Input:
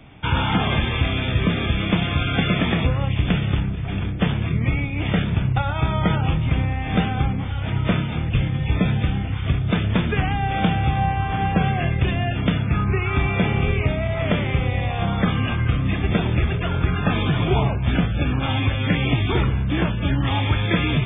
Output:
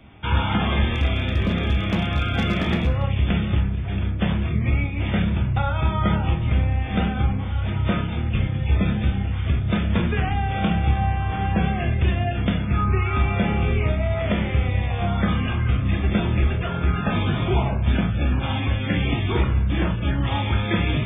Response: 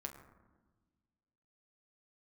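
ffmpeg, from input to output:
-filter_complex "[0:a]asettb=1/sr,asplit=3[s0][s1][s2];[s0]atrim=end=0.904[s3];[s1]atrim=start=0.9:end=3.04,asetpts=PTS-STARTPTS,afade=t=in:d=0.004:c=qsin,afade=t=out:st=2.136:d=0.004:c=qsin,asoftclip=type=hard:threshold=0.2[s4];[s2]atrim=start=3.036[s5];[s3][s4]acrossfade=d=0.004:c1=hsin:c2=qsin[s6];[s6][s5]acrossfade=d=0.004:c1=qsin:c2=hsin[s7];[1:a]atrim=start_sample=2205,atrim=end_sample=4410[s8];[s7][s8]afir=irnorm=-1:irlink=0,volume=1.12"

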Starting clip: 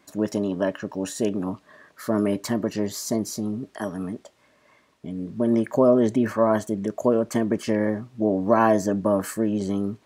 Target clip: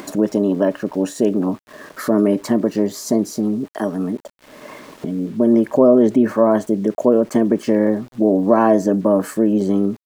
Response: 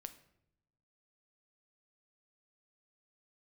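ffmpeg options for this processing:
-filter_complex "[0:a]highpass=220,tiltshelf=f=820:g=6,asplit=2[s0][s1];[s1]alimiter=limit=0.211:level=0:latency=1:release=139,volume=1.06[s2];[s0][s2]amix=inputs=2:normalize=0,acompressor=mode=upward:threshold=0.0891:ratio=2.5,aeval=exprs='val(0)*gte(abs(val(0)),0.00891)':c=same"

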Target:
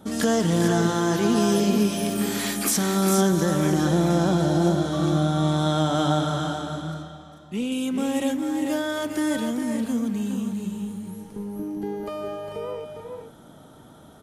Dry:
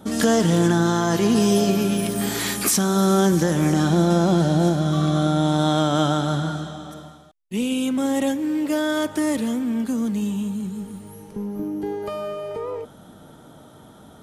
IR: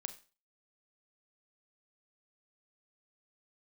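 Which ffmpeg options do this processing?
-filter_complex "[0:a]asettb=1/sr,asplit=3[s0][s1][s2];[s0]atrim=end=6.584[s3];[s1]atrim=start=6.58:end=7.72,asetpts=PTS-STARTPTS,afade=t=in:d=0.004:c=qsin,afade=t=out:st=1.136:d=0.004:c=qsin,highshelf=f=7800:g=-10.5[s4];[s2]atrim=start=7.716[s5];[s3][s4]acrossfade=d=0.004:c1=hsin:c2=qsin[s6];[s6][s5]acrossfade=d=0.004:c1=qsin:c2=hsin,aecho=1:1:405|443:0.422|0.422,volume=0.668"

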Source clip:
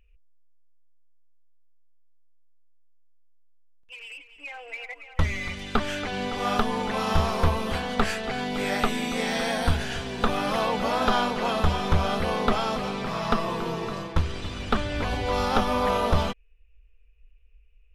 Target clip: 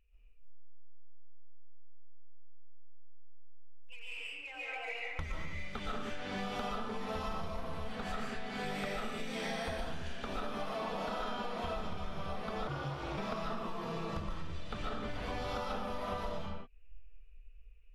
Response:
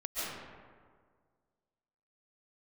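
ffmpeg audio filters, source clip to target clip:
-filter_complex "[1:a]atrim=start_sample=2205,afade=t=out:st=0.39:d=0.01,atrim=end_sample=17640[s0];[0:a][s0]afir=irnorm=-1:irlink=0,asettb=1/sr,asplit=3[s1][s2][s3];[s1]atrim=end=12.674[s4];[s2]atrim=start=12.67:end=13.18,asetpts=PTS-STARTPTS,afade=t=in:d=0.004:c=qsin,afade=t=out:st=0.506:d=0.004:c=qsin,aeval=exprs='val(0)*sin(2*PI*140*n/s)':c=same[s5];[s3]atrim=start=13.176[s6];[s4][s5]acrossfade=d=0.004:c1=hsin:c2=qsin[s7];[s7][s6]acrossfade=d=0.004:c1=qsin:c2=hsin,acompressor=threshold=0.0355:ratio=12,volume=0.562"

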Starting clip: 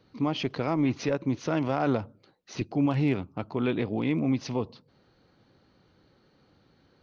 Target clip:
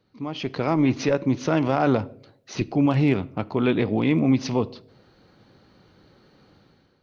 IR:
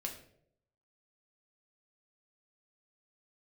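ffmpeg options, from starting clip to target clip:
-filter_complex "[0:a]dynaudnorm=f=140:g=7:m=4.47,asplit=2[s0][s1];[1:a]atrim=start_sample=2205[s2];[s1][s2]afir=irnorm=-1:irlink=0,volume=0.266[s3];[s0][s3]amix=inputs=2:normalize=0,volume=0.447"

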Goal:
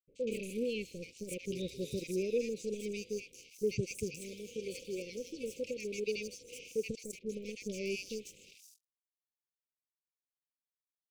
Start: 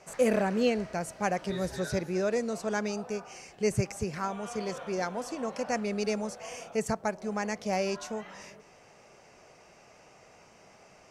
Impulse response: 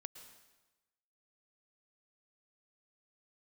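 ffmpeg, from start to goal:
-filter_complex "[0:a]agate=range=0.0224:threshold=0.00282:ratio=3:detection=peak,lowshelf=f=330:g=-12,asettb=1/sr,asplit=3[s0][s1][s2];[s0]atrim=end=4.104[s3];[s1]atrim=start=4.1:end=6.88,asetpts=PTS-STARTPTS,afade=t=in:d=0.004:c=qsin,afade=t=out:st=2.776:d=0.004:c=qsin,acrossover=split=310[s4][s5];[s4]acompressor=threshold=0.00316:ratio=6[s6];[s6][s5]amix=inputs=2:normalize=0[s7];[s2]atrim=start=6.876[s8];[s3][s7]acrossfade=d=0.004:c1=hsin:c2=qsin[s9];[s9][s8]acrossfade=d=0.004:c1=qsin:c2=hsin,alimiter=limit=0.0708:level=0:latency=1:release=101,dynaudnorm=f=330:g=5:m=1.58,aeval=exprs='sgn(val(0))*max(abs(val(0))-0.00596,0)':c=same,asuperstop=centerf=1100:order=20:qfactor=0.61,acrossover=split=1100|5300[s10][s11][s12];[s11]adelay=80[s13];[s12]adelay=240[s14];[s10][s13][s14]amix=inputs=3:normalize=0,adynamicequalizer=threshold=0.00178:dfrequency=3000:dqfactor=0.7:tfrequency=3000:tqfactor=0.7:attack=5:release=100:ratio=0.375:range=3:mode=cutabove:tftype=highshelf"

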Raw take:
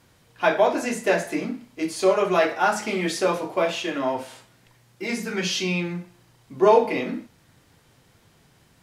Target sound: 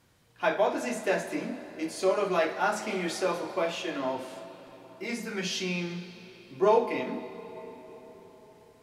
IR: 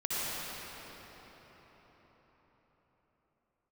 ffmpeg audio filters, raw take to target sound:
-filter_complex "[0:a]asplit=2[s0][s1];[s1]equalizer=f=4100:t=o:w=0.43:g=8.5[s2];[1:a]atrim=start_sample=2205,adelay=69[s3];[s2][s3]afir=irnorm=-1:irlink=0,volume=0.0891[s4];[s0][s4]amix=inputs=2:normalize=0,volume=0.473"

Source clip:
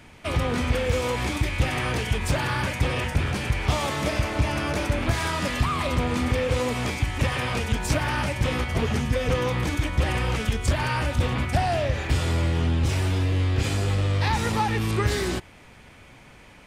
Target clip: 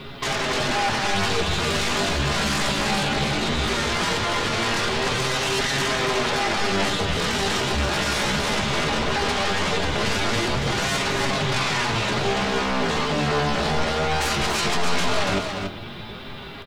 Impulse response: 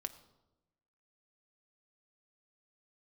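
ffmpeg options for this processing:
-filter_complex "[0:a]lowpass=f=2500:w=0.5412,lowpass=f=2500:w=1.3066,alimiter=limit=0.158:level=0:latency=1:release=466,aeval=exprs='0.0668*sin(PI/2*2*val(0)/0.0668)':c=same,asetrate=70004,aresample=44100,atempo=0.629961,flanger=delay=7.3:depth=6.9:regen=37:speed=0.18:shape=sinusoidal,acrusher=bits=10:mix=0:aa=0.000001,aecho=1:1:284:0.531[s0];[1:a]atrim=start_sample=2205[s1];[s0][s1]afir=irnorm=-1:irlink=0,volume=2.66"

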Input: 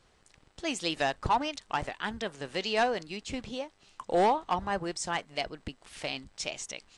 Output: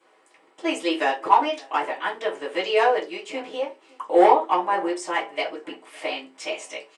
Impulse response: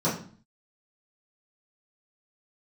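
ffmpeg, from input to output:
-filter_complex "[0:a]highpass=510,asplit=2[s0][s1];[s1]adelay=559.8,volume=0.0631,highshelf=f=4000:g=-12.6[s2];[s0][s2]amix=inputs=2:normalize=0[s3];[1:a]atrim=start_sample=2205,asetrate=88200,aresample=44100[s4];[s3][s4]afir=irnorm=-1:irlink=0,volume=0.891"

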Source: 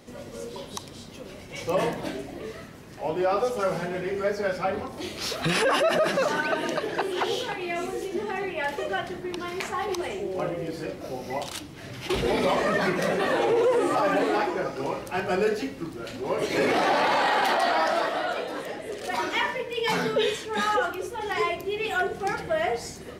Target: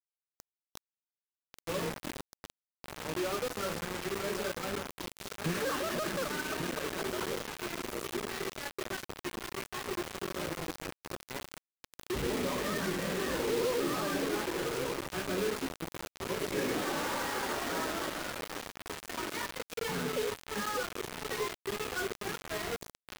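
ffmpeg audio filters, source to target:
-filter_complex "[0:a]equalizer=f=730:w=1.9:g=-13,asplit=2[s0][s1];[s1]adelay=1141,lowpass=f=1100:p=1,volume=0.447,asplit=2[s2][s3];[s3]adelay=1141,lowpass=f=1100:p=1,volume=0.22,asplit=2[s4][s5];[s5]adelay=1141,lowpass=f=1100:p=1,volume=0.22[s6];[s0][s2][s4][s6]amix=inputs=4:normalize=0,acrossover=split=1700[s7][s8];[s8]acompressor=threshold=0.00562:ratio=16[s9];[s7][s9]amix=inputs=2:normalize=0,acrusher=bits=4:mix=0:aa=0.000001,volume=0.501"

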